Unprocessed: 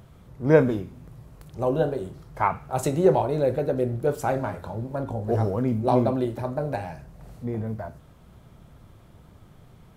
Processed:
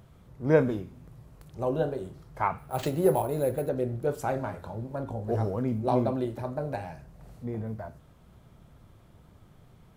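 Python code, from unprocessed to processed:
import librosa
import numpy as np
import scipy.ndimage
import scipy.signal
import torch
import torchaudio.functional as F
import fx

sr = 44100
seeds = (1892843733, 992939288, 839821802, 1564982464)

y = fx.resample_bad(x, sr, factor=4, down='none', up='hold', at=(2.58, 3.69))
y = F.gain(torch.from_numpy(y), -4.5).numpy()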